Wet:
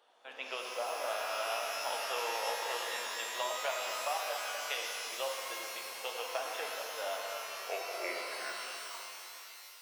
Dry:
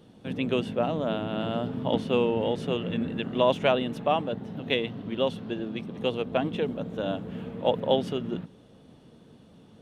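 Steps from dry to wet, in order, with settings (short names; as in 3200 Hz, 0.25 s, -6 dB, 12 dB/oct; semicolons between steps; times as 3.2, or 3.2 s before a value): tape stop at the end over 2.61 s; HPF 730 Hz 24 dB/oct; high shelf 2000 Hz -9.5 dB; compressor, threshold -34 dBFS, peak gain reduction 10 dB; shimmer reverb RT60 3 s, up +12 st, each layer -2 dB, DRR 0 dB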